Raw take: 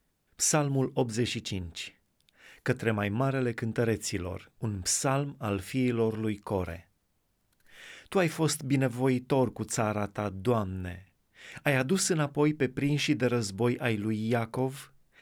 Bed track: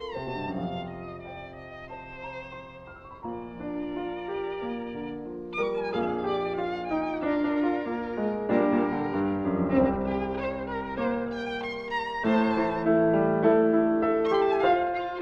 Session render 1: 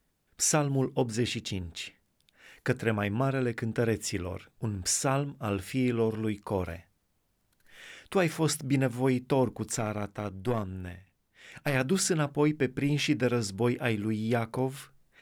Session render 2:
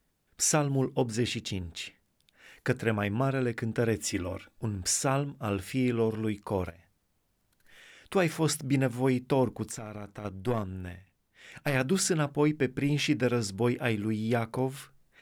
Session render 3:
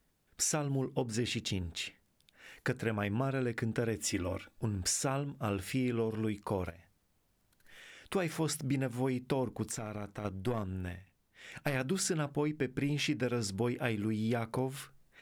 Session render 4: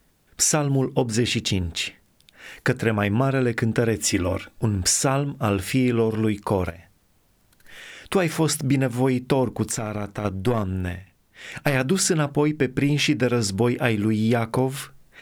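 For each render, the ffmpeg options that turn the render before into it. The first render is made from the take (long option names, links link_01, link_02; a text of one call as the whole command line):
ffmpeg -i in.wav -filter_complex "[0:a]asettb=1/sr,asplit=3[link_01][link_02][link_03];[link_01]atrim=end=9.764[link_04];[link_02]atrim=start=9.76:end=11.75,asetpts=PTS-STARTPTS,afade=type=in:duration=0.004:curve=qsin,afade=type=out:start_time=1.986:duration=0.004:curve=qsin,aeval=exprs='(tanh(6.31*val(0)+0.6)-tanh(0.6))/6.31':channel_layout=same[link_05];[link_03]atrim=start=11.746[link_06];[link_04][link_05]acrossfade=duration=0.004:curve1=hsin:curve2=qsin[link_07];[link_07][link_06]acrossfade=duration=0.004:curve1=qsin:curve2=hsin" out.wav
ffmpeg -i in.wav -filter_complex "[0:a]asettb=1/sr,asplit=3[link_01][link_02][link_03];[link_01]atrim=end=3.984[link_04];[link_02]atrim=start=3.98:end=4.64,asetpts=PTS-STARTPTS,afade=type=in:duration=0.004:curve=qsin,afade=type=out:start_time=0.656:duration=0.004:curve=qsin,aecho=1:1:3.5:0.65,atrim=end_sample=29106[link_05];[link_03]atrim=start=4.636[link_06];[link_04][link_05]acrossfade=duration=0.004:curve1=hsin:curve2=qsin[link_07];[link_07][link_06]acrossfade=duration=0.004:curve1=qsin:curve2=hsin,asplit=3[link_08][link_09][link_10];[link_08]afade=type=out:start_time=6.69:duration=0.02[link_11];[link_09]acompressor=threshold=-49dB:ratio=8:attack=3.2:release=140:knee=1:detection=peak,afade=type=in:start_time=6.69:duration=0.02,afade=type=out:start_time=8.05:duration=0.02[link_12];[link_10]afade=type=in:start_time=8.05:duration=0.02[link_13];[link_11][link_12][link_13]amix=inputs=3:normalize=0,asettb=1/sr,asplit=3[link_14][link_15][link_16];[link_14]atrim=end=9.704[link_17];[link_15]atrim=start=9.7:end=10.25,asetpts=PTS-STARTPTS,afade=type=in:duration=0.004:curve=qsin,afade=type=out:start_time=0.546:duration=0.004:curve=qsin,acompressor=threshold=-34dB:ratio=12:attack=3.2:release=140:knee=1:detection=peak[link_18];[link_16]atrim=start=10.246[link_19];[link_17][link_18]acrossfade=duration=0.004:curve1=hsin:curve2=qsin[link_20];[link_20][link_19]acrossfade=duration=0.004:curve1=qsin:curve2=hsin" out.wav
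ffmpeg -i in.wav -af "acompressor=threshold=-29dB:ratio=6" out.wav
ffmpeg -i in.wav -af "volume=12dB" out.wav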